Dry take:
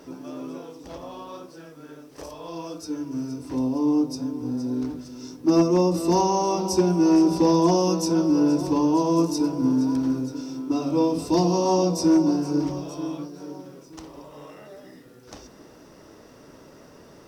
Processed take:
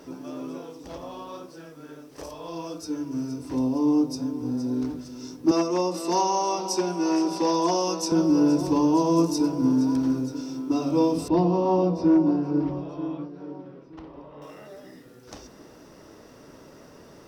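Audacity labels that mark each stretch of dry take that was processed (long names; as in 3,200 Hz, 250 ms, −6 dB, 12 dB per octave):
5.510000	8.120000	meter weighting curve A
11.280000	14.420000	high-frequency loss of the air 360 metres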